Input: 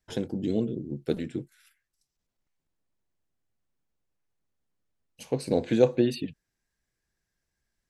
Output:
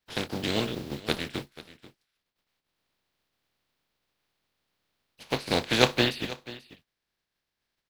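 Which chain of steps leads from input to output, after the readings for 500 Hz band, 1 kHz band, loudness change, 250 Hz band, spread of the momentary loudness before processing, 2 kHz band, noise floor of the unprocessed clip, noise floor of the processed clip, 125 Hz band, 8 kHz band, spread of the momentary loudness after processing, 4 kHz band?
−3.5 dB, +9.0 dB, 0.0 dB, −3.5 dB, 14 LU, +14.0 dB, −84 dBFS, −85 dBFS, −0.5 dB, +8.0 dB, 18 LU, +14.5 dB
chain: compressing power law on the bin magnitudes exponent 0.38
high shelf with overshoot 5,500 Hz −8 dB, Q 1.5
single-tap delay 487 ms −17.5 dB
level −1 dB

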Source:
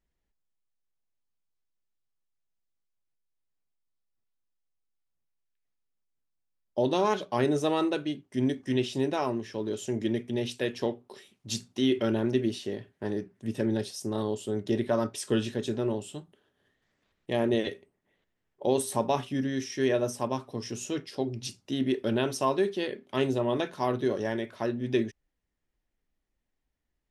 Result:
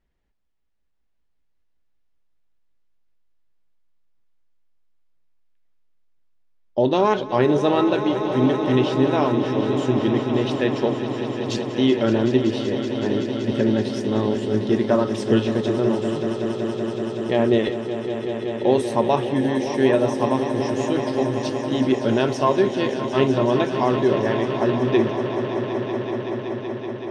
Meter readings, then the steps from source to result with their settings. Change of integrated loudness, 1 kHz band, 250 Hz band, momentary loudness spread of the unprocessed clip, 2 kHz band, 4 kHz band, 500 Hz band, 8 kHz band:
+8.5 dB, +9.5 dB, +9.5 dB, 9 LU, +8.5 dB, +6.0 dB, +9.5 dB, −1.5 dB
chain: Bessel low-pass filter 3,400 Hz, order 2
on a send: echo that builds up and dies away 189 ms, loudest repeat 5, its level −12 dB
on the sum: level +7.5 dB

